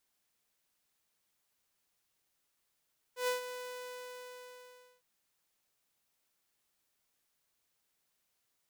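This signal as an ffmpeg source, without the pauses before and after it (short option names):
-f lavfi -i "aevalsrc='0.0473*(2*mod(498*t,1)-1)':d=1.86:s=44100,afade=t=in:d=0.117,afade=t=out:st=0.117:d=0.128:silence=0.266,afade=t=out:st=0.35:d=1.51"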